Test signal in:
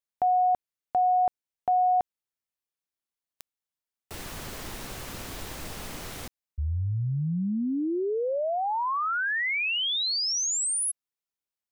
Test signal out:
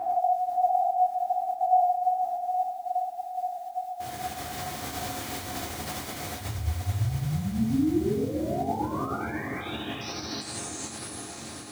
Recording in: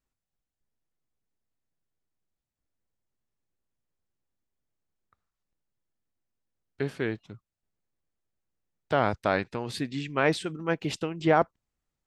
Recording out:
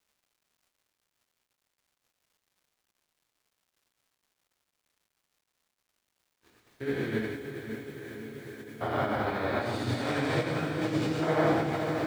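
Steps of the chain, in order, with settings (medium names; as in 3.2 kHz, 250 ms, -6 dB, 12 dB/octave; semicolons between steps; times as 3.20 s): spectrogram pixelated in time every 400 ms; high-pass 90 Hz 12 dB/octave; band-stop 2.7 kHz, Q 14; in parallel at -3 dB: peak limiter -26.5 dBFS; on the sum: chorus voices 4, 1 Hz, delay 12 ms, depth 3 ms; echo that smears into a reverb 510 ms, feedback 78%, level -7.5 dB; word length cut 10-bit, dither none; gated-style reverb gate 190 ms flat, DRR -5 dB; crackle 450 per s -59 dBFS; random flutter of the level 14 Hz, depth 65%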